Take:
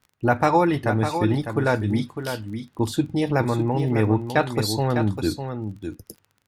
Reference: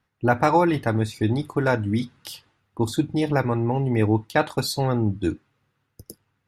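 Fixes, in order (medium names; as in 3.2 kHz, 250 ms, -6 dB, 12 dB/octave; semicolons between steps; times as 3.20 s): de-click; inverse comb 603 ms -8 dB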